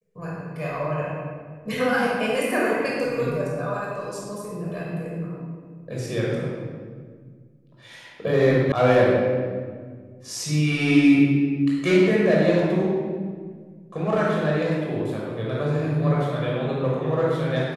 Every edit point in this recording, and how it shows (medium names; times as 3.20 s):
8.72 s: sound stops dead